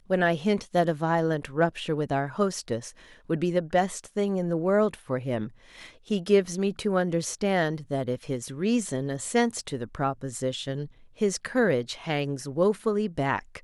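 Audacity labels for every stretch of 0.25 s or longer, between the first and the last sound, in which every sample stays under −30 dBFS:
2.880000	3.300000	silence
5.460000	6.110000	silence
10.840000	11.210000	silence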